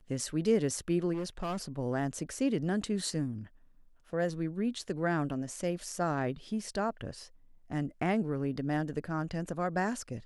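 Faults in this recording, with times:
1.13–1.68 s: clipped -31 dBFS

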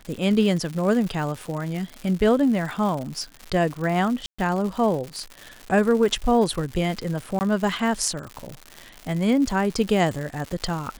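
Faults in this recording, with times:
crackle 200 per s -29 dBFS
4.26–4.38 s: dropout 125 ms
7.39–7.41 s: dropout 19 ms

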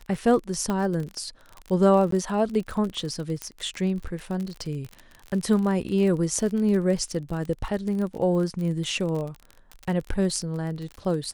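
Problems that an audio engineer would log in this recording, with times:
crackle 40 per s -30 dBFS
0.70 s: pop -15 dBFS
2.11–2.12 s: dropout 13 ms
3.42 s: pop -15 dBFS

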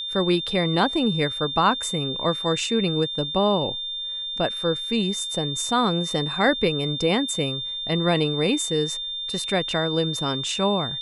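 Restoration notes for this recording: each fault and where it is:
whine 3.6 kHz -28 dBFS

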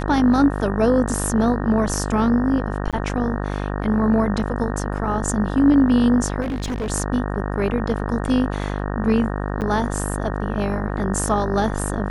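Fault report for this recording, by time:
buzz 50 Hz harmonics 37 -25 dBFS
2.91–2.93 s: dropout 17 ms
6.41–6.90 s: clipped -21.5 dBFS
9.61–9.62 s: dropout 8.5 ms

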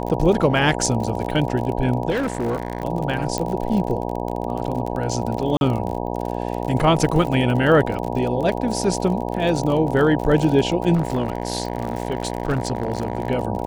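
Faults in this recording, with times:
buzz 60 Hz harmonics 16 -26 dBFS
crackle 51 per s -26 dBFS
2.10–2.83 s: clipped -18.5 dBFS
3.38 s: pop -10 dBFS
5.57–5.61 s: dropout 41 ms
10.94–13.28 s: clipped -16 dBFS

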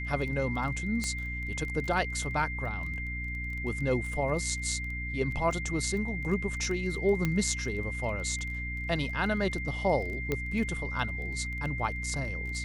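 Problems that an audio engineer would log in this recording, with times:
crackle 17 per s -36 dBFS
hum 60 Hz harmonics 5 -37 dBFS
whine 2.1 kHz -36 dBFS
1.04 s: pop -19 dBFS
7.25 s: pop -15 dBFS
10.32 s: pop -16 dBFS

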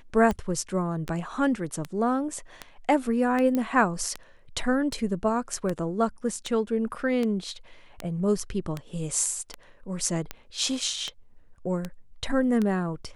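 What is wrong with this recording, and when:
tick 78 rpm -16 dBFS
3.55 s: pop -15 dBFS

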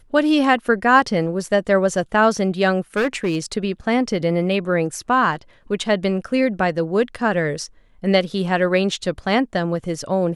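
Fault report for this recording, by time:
2.96–3.37 s: clipped -15.5 dBFS

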